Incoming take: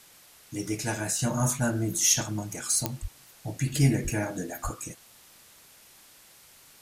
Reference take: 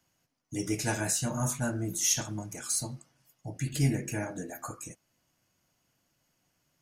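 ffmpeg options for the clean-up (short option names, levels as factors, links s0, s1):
-filter_complex "[0:a]adeclick=t=4,asplit=3[s0][s1][s2];[s0]afade=t=out:st=3.01:d=0.02[s3];[s1]highpass=f=140:w=0.5412,highpass=f=140:w=1.3066,afade=t=in:st=3.01:d=0.02,afade=t=out:st=3.13:d=0.02[s4];[s2]afade=t=in:st=3.13:d=0.02[s5];[s3][s4][s5]amix=inputs=3:normalize=0,asplit=3[s6][s7][s8];[s6]afade=t=out:st=4.03:d=0.02[s9];[s7]highpass=f=140:w=0.5412,highpass=f=140:w=1.3066,afade=t=in:st=4.03:d=0.02,afade=t=out:st=4.15:d=0.02[s10];[s8]afade=t=in:st=4.15:d=0.02[s11];[s9][s10][s11]amix=inputs=3:normalize=0,asplit=3[s12][s13][s14];[s12]afade=t=out:st=4.63:d=0.02[s15];[s13]highpass=f=140:w=0.5412,highpass=f=140:w=1.3066,afade=t=in:st=4.63:d=0.02,afade=t=out:st=4.75:d=0.02[s16];[s14]afade=t=in:st=4.75:d=0.02[s17];[s15][s16][s17]amix=inputs=3:normalize=0,afwtdn=0.0022,asetnsamples=n=441:p=0,asendcmd='1.19 volume volume -4.5dB',volume=1"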